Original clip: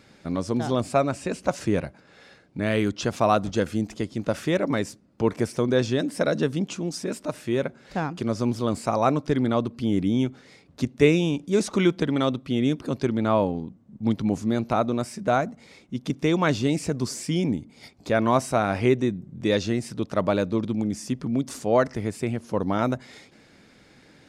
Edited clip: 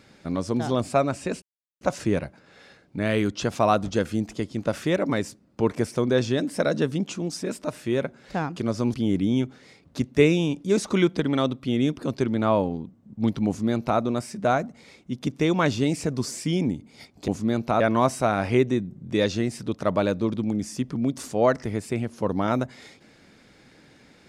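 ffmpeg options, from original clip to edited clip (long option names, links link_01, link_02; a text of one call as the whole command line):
ffmpeg -i in.wav -filter_complex "[0:a]asplit=5[link_01][link_02][link_03][link_04][link_05];[link_01]atrim=end=1.42,asetpts=PTS-STARTPTS,afade=type=out:start_time=1.416:duration=0.004:curve=hsin,apad=pad_dur=0.39[link_06];[link_02]atrim=start=1.42:end=8.552,asetpts=PTS-STARTPTS,afade=type=in:duration=0.004:curve=hsin[link_07];[link_03]atrim=start=9.768:end=18.112[link_08];[link_04]atrim=start=14.298:end=14.822[link_09];[link_05]atrim=start=18.108[link_10];[link_06][link_07]concat=n=2:v=0:a=1[link_11];[link_11][link_08]acrossfade=duration=0.004:curve1=hsin:curve2=hsin[link_12];[link_12][link_09]acrossfade=duration=0.004:curve1=hsin:curve2=hsin[link_13];[link_13][link_10]acrossfade=duration=0.004:curve1=hsin:curve2=hsin" out.wav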